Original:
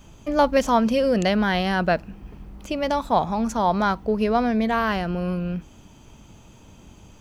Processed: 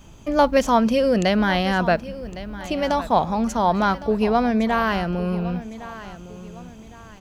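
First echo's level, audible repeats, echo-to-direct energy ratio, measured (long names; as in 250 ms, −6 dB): −15.5 dB, 2, −15.0 dB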